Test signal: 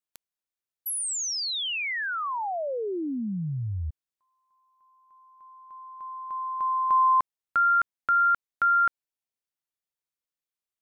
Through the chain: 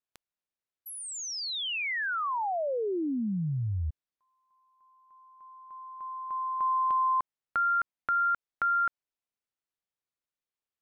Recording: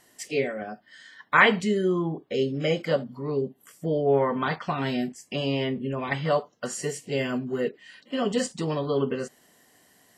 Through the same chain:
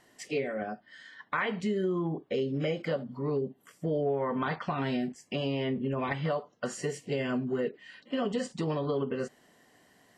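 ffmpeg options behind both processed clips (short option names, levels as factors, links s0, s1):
-af "aemphasis=mode=reproduction:type=50kf,acompressor=threshold=0.0631:ratio=6:attack=1.6:release=440:knee=1:detection=peak"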